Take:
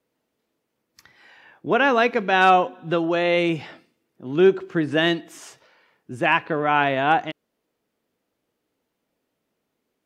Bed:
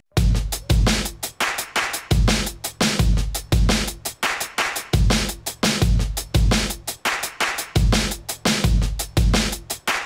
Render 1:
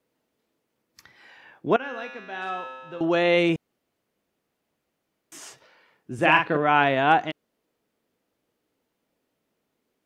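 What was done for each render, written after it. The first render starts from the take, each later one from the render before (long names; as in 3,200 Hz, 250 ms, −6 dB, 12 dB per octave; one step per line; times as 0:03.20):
0:01.76–0:03.01: tuned comb filter 130 Hz, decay 1.6 s, mix 90%
0:03.56–0:05.32: fill with room tone
0:06.14–0:06.57: double-tracking delay 45 ms −4.5 dB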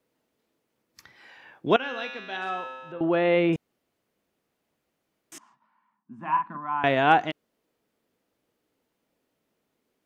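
0:01.66–0:02.37: parametric band 3,500 Hz +10 dB 0.8 octaves
0:02.92–0:03.53: high-frequency loss of the air 390 metres
0:05.38–0:06.84: pair of resonant band-passes 470 Hz, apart 2.2 octaves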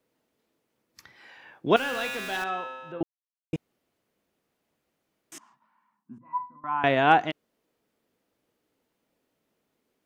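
0:01.76–0:02.44: converter with a step at zero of −33.5 dBFS
0:03.03–0:03.53: silence
0:06.18–0:06.64: resonances in every octave B, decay 0.22 s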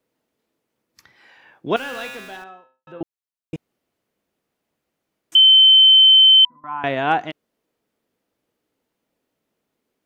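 0:02.00–0:02.87: fade out and dull
0:05.35–0:06.45: beep over 3,080 Hz −7 dBFS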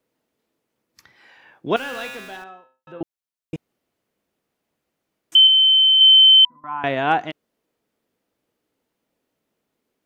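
0:05.47–0:06.01: high-frequency loss of the air 200 metres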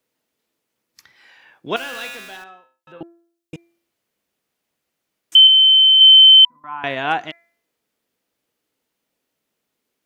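tilt shelving filter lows −4.5 dB, about 1,400 Hz
hum removal 339.5 Hz, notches 7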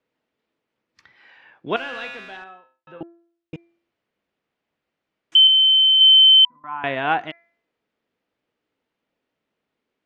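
low-pass filter 2,900 Hz 12 dB per octave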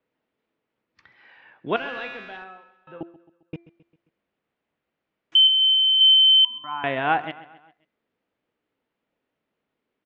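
high-frequency loss of the air 160 metres
repeating echo 133 ms, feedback 51%, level −18 dB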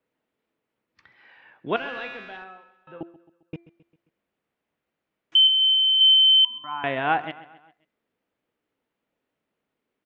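level −1 dB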